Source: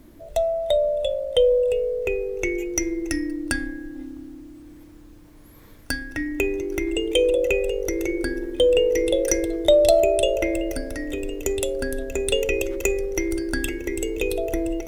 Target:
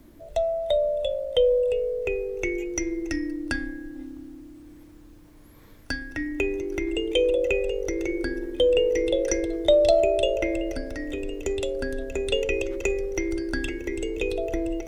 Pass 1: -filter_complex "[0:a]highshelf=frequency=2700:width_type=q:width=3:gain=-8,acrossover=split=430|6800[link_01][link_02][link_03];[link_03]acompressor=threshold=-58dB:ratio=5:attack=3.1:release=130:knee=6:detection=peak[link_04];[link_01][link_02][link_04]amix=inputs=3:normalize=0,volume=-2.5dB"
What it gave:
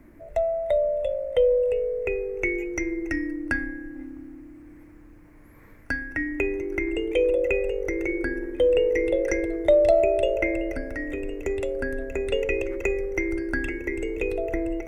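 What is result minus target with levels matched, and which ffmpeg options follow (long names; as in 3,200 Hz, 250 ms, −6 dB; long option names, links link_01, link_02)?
4,000 Hz band −10.0 dB
-filter_complex "[0:a]acrossover=split=430|6800[link_01][link_02][link_03];[link_03]acompressor=threshold=-58dB:ratio=5:attack=3.1:release=130:knee=6:detection=peak[link_04];[link_01][link_02][link_04]amix=inputs=3:normalize=0,volume=-2.5dB"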